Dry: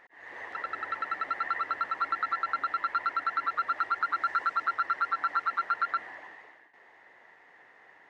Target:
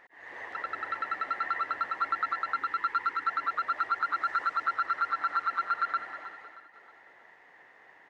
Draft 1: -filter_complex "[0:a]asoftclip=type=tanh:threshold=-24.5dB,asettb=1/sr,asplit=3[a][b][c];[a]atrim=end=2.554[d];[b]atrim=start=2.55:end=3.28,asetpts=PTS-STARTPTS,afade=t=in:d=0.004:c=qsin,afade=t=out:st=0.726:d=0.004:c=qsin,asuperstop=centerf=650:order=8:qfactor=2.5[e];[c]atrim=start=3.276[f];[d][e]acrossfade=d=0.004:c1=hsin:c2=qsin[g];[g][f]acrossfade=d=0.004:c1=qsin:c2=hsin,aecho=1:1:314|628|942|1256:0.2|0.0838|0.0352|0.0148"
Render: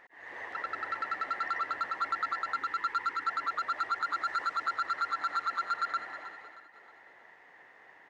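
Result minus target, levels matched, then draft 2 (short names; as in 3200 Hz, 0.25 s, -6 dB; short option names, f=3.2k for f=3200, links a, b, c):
soft clip: distortion +17 dB
-filter_complex "[0:a]asoftclip=type=tanh:threshold=-14dB,asettb=1/sr,asplit=3[a][b][c];[a]atrim=end=2.554[d];[b]atrim=start=2.55:end=3.28,asetpts=PTS-STARTPTS,afade=t=in:d=0.004:c=qsin,afade=t=out:st=0.726:d=0.004:c=qsin,asuperstop=centerf=650:order=8:qfactor=2.5[e];[c]atrim=start=3.276[f];[d][e]acrossfade=d=0.004:c1=hsin:c2=qsin[g];[g][f]acrossfade=d=0.004:c1=qsin:c2=hsin,aecho=1:1:314|628|942|1256:0.2|0.0838|0.0352|0.0148"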